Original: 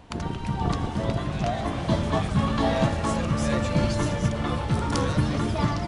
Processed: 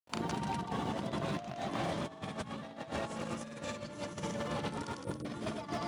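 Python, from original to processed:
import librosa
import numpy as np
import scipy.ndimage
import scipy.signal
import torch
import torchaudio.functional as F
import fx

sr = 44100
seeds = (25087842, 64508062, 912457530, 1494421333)

y = scipy.signal.sosfilt(scipy.signal.butter(2, 180.0, 'highpass', fs=sr, output='sos'), x)
y = fx.high_shelf(y, sr, hz=9100.0, db=4.0)
y = fx.quant_dither(y, sr, seeds[0], bits=10, dither='none')
y = fx.granulator(y, sr, seeds[1], grain_ms=100.0, per_s=20.0, spray_ms=100.0, spread_st=0)
y = fx.spec_erase(y, sr, start_s=5.04, length_s=0.21, low_hz=680.0, high_hz=8300.0)
y = y + 10.0 ** (-8.5 / 20.0) * np.pad(y, (int(174 * sr / 1000.0), 0))[:len(y)]
y = fx.over_compress(y, sr, threshold_db=-32.0, ratio=-0.5)
y = y * librosa.db_to_amplitude(-6.0)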